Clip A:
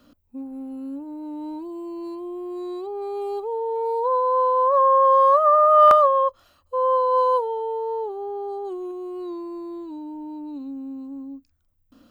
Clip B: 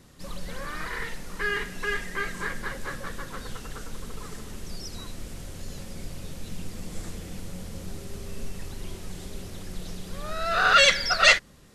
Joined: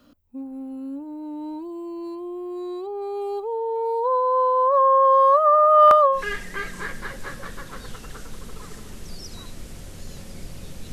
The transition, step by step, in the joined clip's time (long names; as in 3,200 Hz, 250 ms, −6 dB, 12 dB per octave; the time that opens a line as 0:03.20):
clip A
0:06.17: continue with clip B from 0:01.78, crossfade 0.12 s